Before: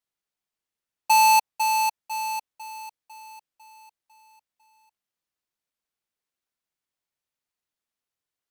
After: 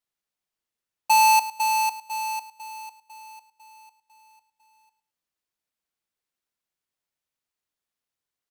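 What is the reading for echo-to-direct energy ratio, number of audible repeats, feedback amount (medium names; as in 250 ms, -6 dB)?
-15.0 dB, 2, 22%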